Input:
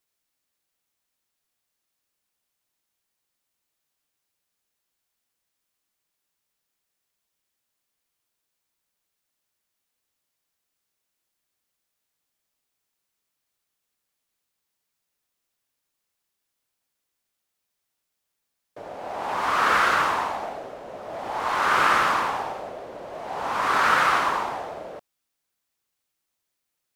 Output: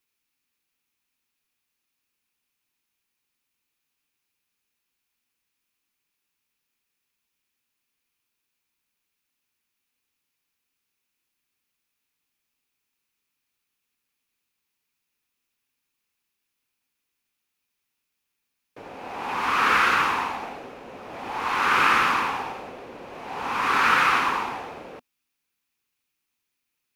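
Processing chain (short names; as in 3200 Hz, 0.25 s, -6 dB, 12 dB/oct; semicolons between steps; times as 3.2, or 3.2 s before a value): thirty-one-band EQ 250 Hz +5 dB, 630 Hz -11 dB, 2500 Hz +8 dB, 8000 Hz -4 dB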